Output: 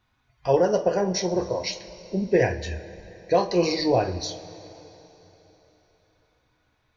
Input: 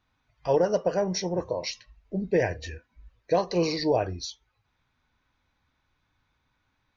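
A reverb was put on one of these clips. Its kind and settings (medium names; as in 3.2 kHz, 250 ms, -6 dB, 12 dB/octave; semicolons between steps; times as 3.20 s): two-slope reverb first 0.26 s, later 3.7 s, from -18 dB, DRR 6 dB; trim +2.5 dB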